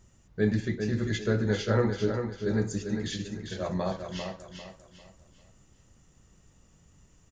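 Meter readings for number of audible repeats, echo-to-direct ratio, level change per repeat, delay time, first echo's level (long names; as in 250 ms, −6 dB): 4, −6.0 dB, −9.5 dB, 397 ms, −6.5 dB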